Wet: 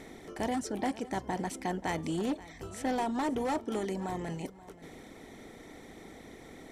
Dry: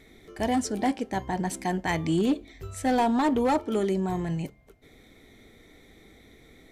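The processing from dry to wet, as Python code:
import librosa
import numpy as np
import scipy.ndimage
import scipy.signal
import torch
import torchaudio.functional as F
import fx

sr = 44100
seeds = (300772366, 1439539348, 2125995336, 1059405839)

y = fx.bin_compress(x, sr, power=0.6)
y = fx.dereverb_blind(y, sr, rt60_s=0.66)
y = fx.echo_feedback(y, sr, ms=530, feedback_pct=18, wet_db=-18)
y = y * 10.0 ** (-9.0 / 20.0)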